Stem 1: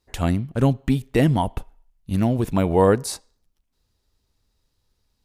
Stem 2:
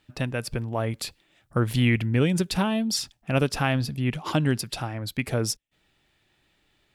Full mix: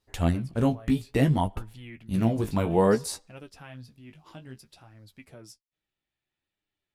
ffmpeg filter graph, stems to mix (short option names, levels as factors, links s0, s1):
-filter_complex "[0:a]volume=0.891[s0];[1:a]volume=0.133[s1];[s0][s1]amix=inputs=2:normalize=0,flanger=delay=9.6:depth=9.8:regen=26:speed=0.6:shape=sinusoidal"